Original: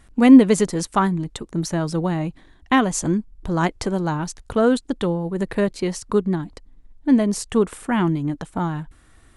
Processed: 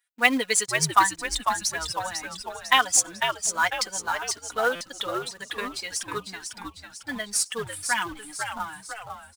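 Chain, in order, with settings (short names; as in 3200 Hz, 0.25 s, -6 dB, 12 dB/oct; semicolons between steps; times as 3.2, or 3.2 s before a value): per-bin expansion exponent 1.5; HPF 1400 Hz 12 dB/oct; comb 4.1 ms, depth 85%; in parallel at -4 dB: companded quantiser 4-bit; on the sum: frequency-shifting echo 0.499 s, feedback 50%, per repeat -110 Hz, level -6.5 dB; stuck buffer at 4.75, samples 256, times 9; gain +2 dB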